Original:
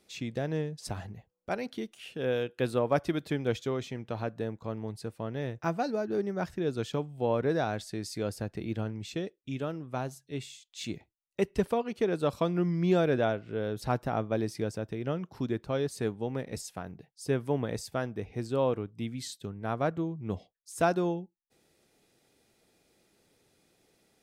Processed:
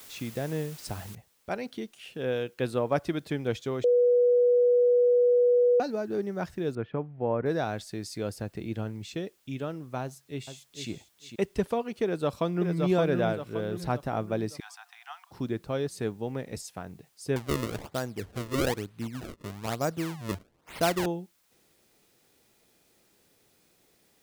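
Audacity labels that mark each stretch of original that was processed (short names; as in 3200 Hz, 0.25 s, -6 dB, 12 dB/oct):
1.150000	1.150000	noise floor step -49 dB -69 dB
3.840000	5.800000	bleep 488 Hz -18 dBFS
6.750000	7.460000	LPF 2100 Hz 24 dB/oct
10.020000	10.900000	echo throw 0.45 s, feedback 15%, level -8 dB
12.040000	12.760000	echo throw 0.57 s, feedback 45%, level -3.5 dB
14.600000	15.310000	Chebyshev high-pass 710 Hz, order 10
17.360000	21.060000	decimation with a swept rate 32×, swing 160% 1.1 Hz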